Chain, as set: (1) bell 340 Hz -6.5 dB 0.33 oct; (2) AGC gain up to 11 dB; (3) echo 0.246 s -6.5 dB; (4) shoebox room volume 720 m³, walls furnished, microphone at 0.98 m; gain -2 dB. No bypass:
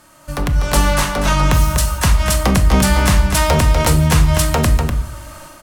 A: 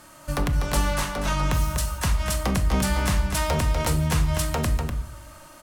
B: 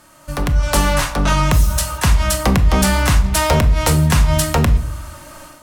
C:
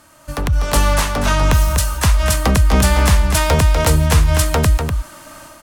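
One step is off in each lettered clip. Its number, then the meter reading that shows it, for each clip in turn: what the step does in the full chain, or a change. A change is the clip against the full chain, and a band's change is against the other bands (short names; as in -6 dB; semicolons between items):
2, loudness change -9.5 LU; 3, echo-to-direct -3.5 dB to -7.5 dB; 4, echo-to-direct -3.5 dB to -6.5 dB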